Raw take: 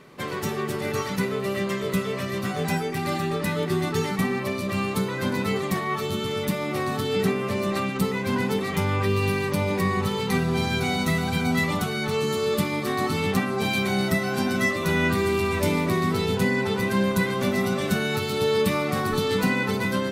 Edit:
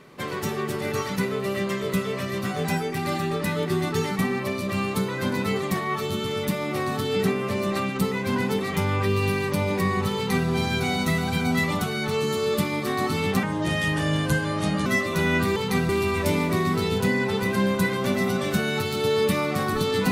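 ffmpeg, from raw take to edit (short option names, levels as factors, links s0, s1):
-filter_complex "[0:a]asplit=5[s0][s1][s2][s3][s4];[s0]atrim=end=13.434[s5];[s1]atrim=start=13.43:end=14.56,asetpts=PTS-STARTPTS,asetrate=34839,aresample=44100[s6];[s2]atrim=start=14.556:end=15.262[s7];[s3]atrim=start=10.148:end=10.482[s8];[s4]atrim=start=15.258[s9];[s5][s6]acrossfade=d=0.004:c1=hsin:c2=hsin[s10];[s10][s7]acrossfade=d=0.004:c1=hsin:c2=hsin[s11];[s11][s8]acrossfade=d=0.004:c1=hsin:c2=hsin[s12];[s12][s9]acrossfade=d=0.004:c1=hsin:c2=hsin"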